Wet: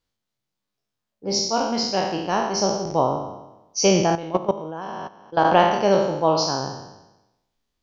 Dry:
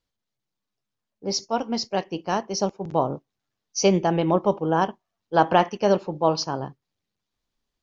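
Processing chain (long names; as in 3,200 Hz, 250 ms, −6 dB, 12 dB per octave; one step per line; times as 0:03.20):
peak hold with a decay on every bin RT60 0.97 s
0:04.15–0:05.45: output level in coarse steps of 16 dB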